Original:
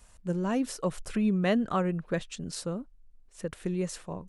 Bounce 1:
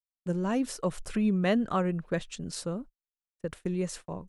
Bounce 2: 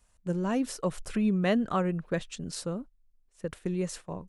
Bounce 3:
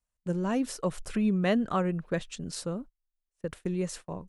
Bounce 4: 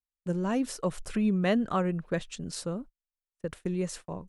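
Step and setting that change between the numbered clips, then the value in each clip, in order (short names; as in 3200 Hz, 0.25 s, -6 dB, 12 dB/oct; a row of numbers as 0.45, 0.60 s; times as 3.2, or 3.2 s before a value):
gate, range: -58, -10, -30, -45 dB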